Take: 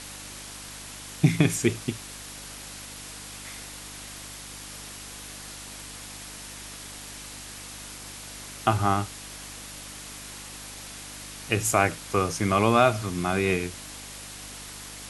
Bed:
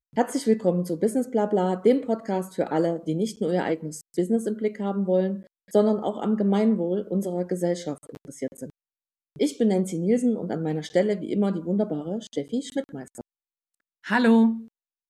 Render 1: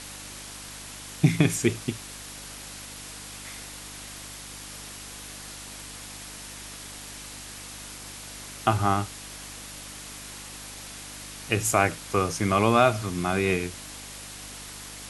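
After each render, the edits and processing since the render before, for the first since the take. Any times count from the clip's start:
no processing that can be heard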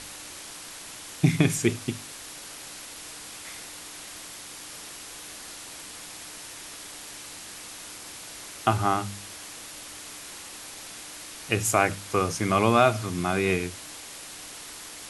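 hum removal 50 Hz, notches 5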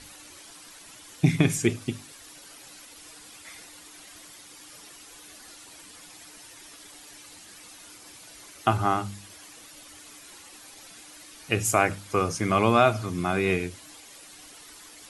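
broadband denoise 10 dB, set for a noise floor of −42 dBFS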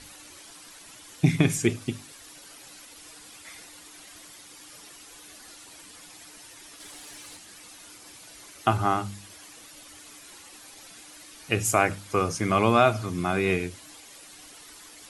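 0:06.80–0:07.37: leveller curve on the samples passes 1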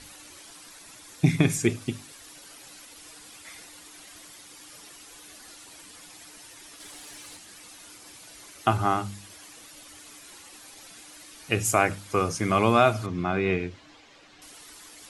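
0:00.67–0:01.74: notch filter 3,000 Hz
0:13.06–0:14.42: high-frequency loss of the air 170 metres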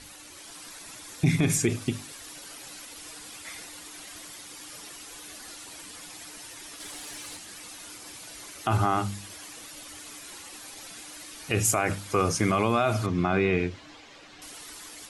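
brickwall limiter −16.5 dBFS, peak gain reduction 11 dB
automatic gain control gain up to 4 dB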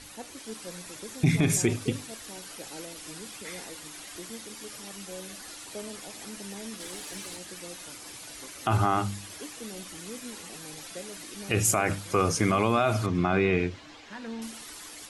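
mix in bed −20.5 dB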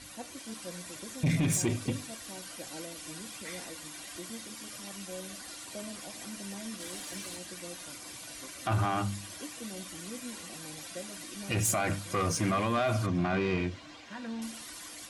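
soft clipping −21.5 dBFS, distortion −11 dB
notch comb filter 430 Hz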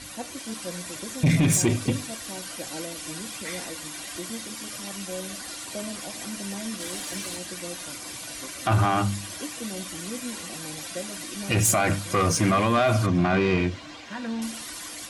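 level +7.5 dB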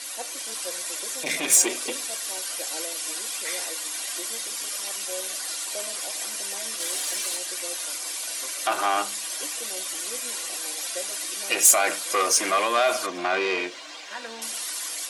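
high-pass filter 390 Hz 24 dB per octave
high-shelf EQ 3,300 Hz +8 dB

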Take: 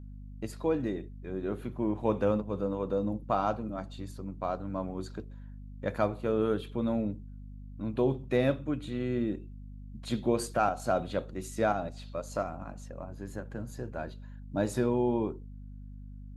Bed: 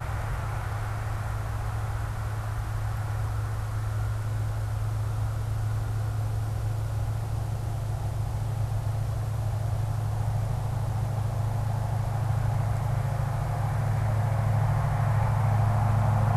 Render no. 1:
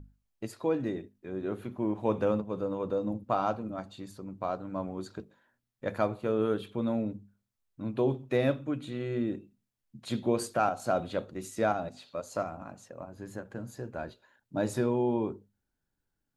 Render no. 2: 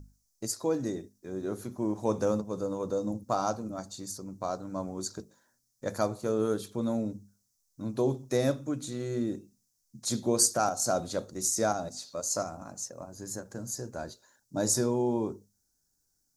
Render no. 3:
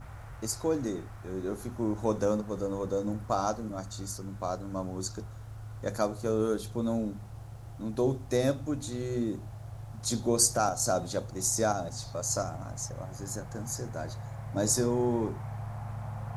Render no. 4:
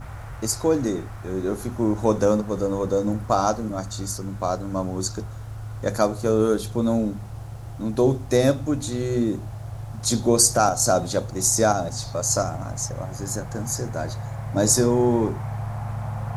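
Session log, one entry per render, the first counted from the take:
mains-hum notches 50/100/150/200/250 Hz
high shelf with overshoot 4,100 Hz +13 dB, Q 3
mix in bed −14.5 dB
level +8.5 dB; brickwall limiter −2 dBFS, peak gain reduction 3 dB

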